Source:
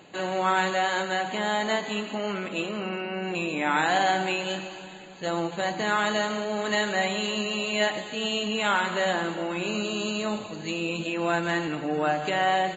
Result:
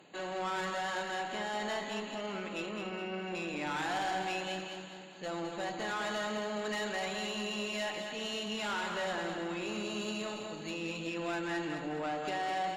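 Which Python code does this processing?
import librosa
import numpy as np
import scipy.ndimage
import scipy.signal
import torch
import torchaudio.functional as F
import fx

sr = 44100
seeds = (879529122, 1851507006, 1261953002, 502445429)

y = scipy.signal.sosfilt(scipy.signal.butter(2, 130.0, 'highpass', fs=sr, output='sos'), x)
y = fx.tube_stage(y, sr, drive_db=24.0, bias=0.2)
y = fx.echo_feedback(y, sr, ms=209, feedback_pct=42, wet_db=-7)
y = y * librosa.db_to_amplitude(-7.0)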